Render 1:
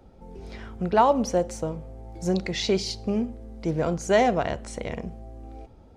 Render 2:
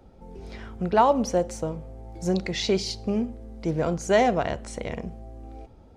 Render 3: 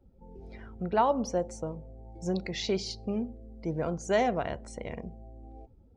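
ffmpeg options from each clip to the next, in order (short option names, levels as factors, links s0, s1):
-af anull
-af "afftdn=nr=15:nf=-46,volume=0.501"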